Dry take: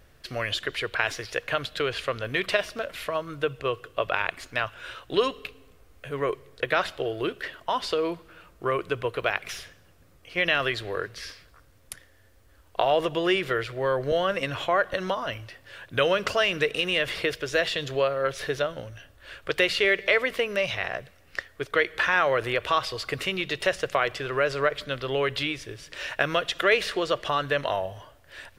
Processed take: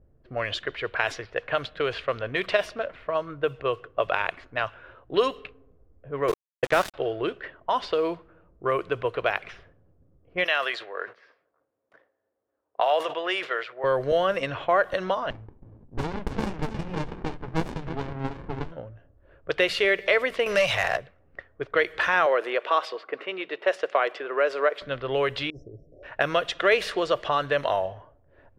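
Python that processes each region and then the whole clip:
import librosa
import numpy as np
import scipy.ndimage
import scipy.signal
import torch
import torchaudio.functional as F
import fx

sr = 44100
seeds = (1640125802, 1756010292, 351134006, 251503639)

y = fx.chain(x, sr, fx.low_shelf(hz=290.0, db=9.0),
    fx.sample_gate(floor_db=-27.5), at=(6.28, 6.94))
y = fx.chain(y, sr, fx.highpass(hz=630.0, slope=12),
    fx.sustainer(db_per_s=150.0), at=(10.44, 13.84))
y = fx.chain(y, sr, fx.echo_single(ms=322, db=-8.0),
    fx.running_max(window=65), at=(15.3, 18.72))
y = fx.chain(y, sr, fx.peak_eq(hz=270.0, db=-11.5, octaves=1.2),
    fx.leveller(passes=2),
    fx.band_squash(depth_pct=40), at=(20.46, 20.97))
y = fx.chain(y, sr, fx.highpass(hz=300.0, slope=24),
    fx.high_shelf(hz=4900.0, db=-9.5), at=(22.26, 24.82))
y = fx.chain(y, sr, fx.brickwall_bandstop(low_hz=760.0, high_hz=5100.0),
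    fx.air_absorb(metres=92.0),
    fx.over_compress(threshold_db=-41.0, ratio=-1.0), at=(25.5, 26.03))
y = fx.env_lowpass(y, sr, base_hz=420.0, full_db=-21.5)
y = fx.dynamic_eq(y, sr, hz=710.0, q=0.75, threshold_db=-37.0, ratio=4.0, max_db=5)
y = y * 10.0 ** (-2.0 / 20.0)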